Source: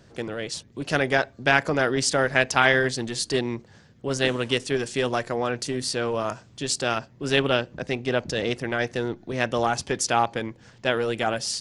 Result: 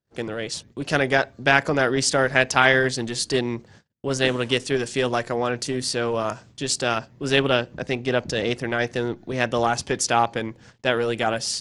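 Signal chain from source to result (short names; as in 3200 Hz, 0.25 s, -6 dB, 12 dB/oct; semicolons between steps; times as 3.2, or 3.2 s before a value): gate -49 dBFS, range -36 dB; gain +2 dB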